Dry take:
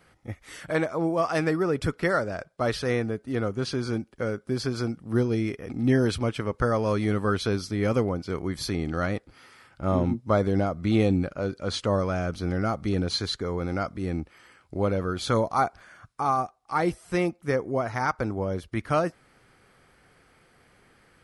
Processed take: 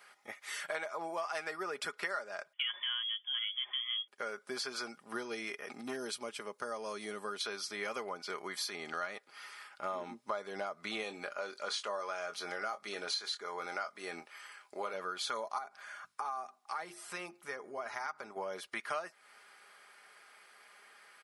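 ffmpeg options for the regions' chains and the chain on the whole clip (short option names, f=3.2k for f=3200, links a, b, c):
-filter_complex "[0:a]asettb=1/sr,asplit=3[a][b][c];[a]atrim=end=2.534[d];[b]atrim=start=2.53:end=4.08,asetpts=PTS-STARTPTS,afade=t=in:d=0.004:c=qsin,afade=t=out:st=1.546:d=0.004:c=qsin,aecho=1:1:5.4:0.32,atrim=end_sample=68355,lowpass=f=3k:t=q:w=0.5098,lowpass=f=3k:t=q:w=0.6013,lowpass=f=3k:t=q:w=0.9,lowpass=f=3k:t=q:w=2.563,afreqshift=-3500[e];[c]atrim=start=4.076[f];[d][e]acrossfade=d=0.004:c1=hsin:c2=qsin[g];[g][f]acrossfade=d=0.004:c1=qsin:c2=hsin,asettb=1/sr,asplit=3[h][i][j];[h]atrim=end=5.814[k];[i]atrim=start=5.81:end=7.41,asetpts=PTS-STARTPTS,afade=t=in:d=0.004:c=qsin,afade=t=out:st=1.596:d=0.004:c=qsin,highpass=110,equalizer=f=1.6k:w=0.37:g=-11.5,asoftclip=type=hard:threshold=-17dB[l];[j]atrim=start=7.406[m];[k][l]acrossfade=d=0.004:c1=hsin:c2=qsin[n];[n][m]acrossfade=d=0.004:c1=qsin:c2=hsin,asettb=1/sr,asplit=3[o][p][q];[o]atrim=end=11.034[r];[p]atrim=start=11.03:end=14.94,asetpts=PTS-STARTPTS,afade=t=in:d=0.004:c=qsin,afade=t=out:st=3.906:d=0.004:c=qsin,bass=f=250:g=-7,treble=f=4k:g=1,asplit=2[s][t];[t]adelay=24,volume=-10dB[u];[s][u]amix=inputs=2:normalize=0,atrim=end_sample=172431[v];[q]atrim=start=14.936[w];[r][v]acrossfade=d=0.004:c1=hsin:c2=qsin[x];[x][w]acrossfade=d=0.004:c1=qsin:c2=hsin,asettb=1/sr,asplit=3[y][z][aa];[y]atrim=end=15.584[ab];[z]atrim=start=15.58:end=18.36,asetpts=PTS-STARTPTS,afade=t=in:d=0.004:c=qsin,afade=t=out:st=2.776:d=0.004:c=qsin,lowshelf=f=180:g=8.5,acompressor=threshold=-33dB:ratio=2.5:attack=3.2:release=140:knee=1:detection=peak,bandreject=f=50:t=h:w=6,bandreject=f=100:t=h:w=6,bandreject=f=150:t=h:w=6,bandreject=f=200:t=h:w=6,bandreject=f=250:t=h:w=6,bandreject=f=300:t=h:w=6,bandreject=f=350:t=h:w=6,bandreject=f=400:t=h:w=6[ac];[aa]atrim=start=18.356[ad];[ab][ac]acrossfade=d=0.004:c1=hsin:c2=qsin[ae];[ae][ad]acrossfade=d=0.004:c1=qsin:c2=hsin,highpass=840,aecho=1:1:4.9:0.47,acompressor=threshold=-39dB:ratio=4,volume=2.5dB"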